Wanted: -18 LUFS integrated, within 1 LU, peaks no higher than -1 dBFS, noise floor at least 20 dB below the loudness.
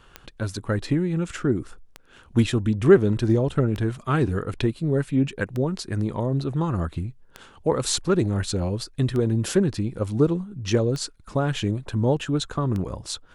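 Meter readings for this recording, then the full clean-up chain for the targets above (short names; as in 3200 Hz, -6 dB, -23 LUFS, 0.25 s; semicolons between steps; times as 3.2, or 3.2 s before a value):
clicks 8; loudness -24.5 LUFS; peak -4.0 dBFS; loudness target -18.0 LUFS
-> de-click; gain +6.5 dB; limiter -1 dBFS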